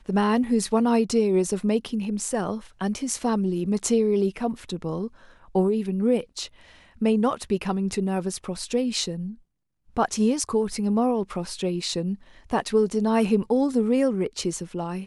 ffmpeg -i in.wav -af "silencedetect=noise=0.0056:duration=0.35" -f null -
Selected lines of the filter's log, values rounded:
silence_start: 9.39
silence_end: 9.97 | silence_duration: 0.58